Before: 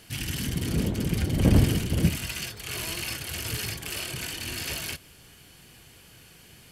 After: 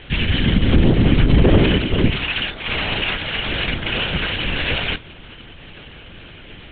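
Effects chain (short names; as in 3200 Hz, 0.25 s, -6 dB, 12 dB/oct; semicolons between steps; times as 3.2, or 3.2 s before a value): 1.44–3.69 HPF 220 Hz; LPC vocoder at 8 kHz whisper; maximiser +16.5 dB; gain -2 dB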